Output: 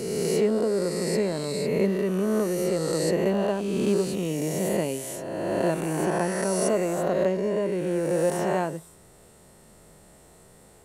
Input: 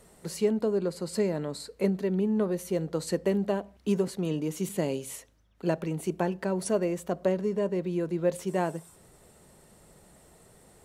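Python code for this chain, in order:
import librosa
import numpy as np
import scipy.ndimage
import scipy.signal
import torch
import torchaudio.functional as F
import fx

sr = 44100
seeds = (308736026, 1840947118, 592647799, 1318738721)

y = fx.spec_swells(x, sr, rise_s=2.09)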